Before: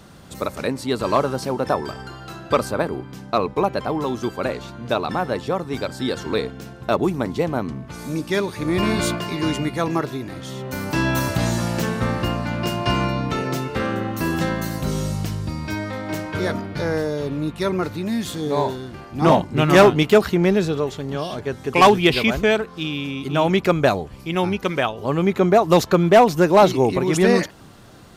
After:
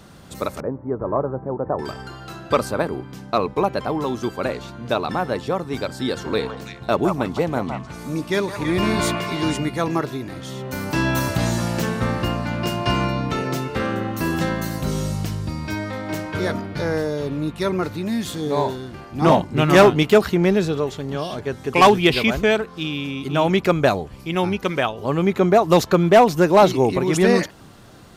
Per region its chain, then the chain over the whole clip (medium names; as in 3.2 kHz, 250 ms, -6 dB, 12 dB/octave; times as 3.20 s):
0.60–1.79 s: Gaussian low-pass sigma 7.8 samples + peaking EQ 230 Hz -5 dB 0.59 oct
6.08–9.57 s: repeats whose band climbs or falls 163 ms, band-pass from 940 Hz, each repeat 1.4 oct, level -1.5 dB + tape noise reduction on one side only decoder only
whole clip: none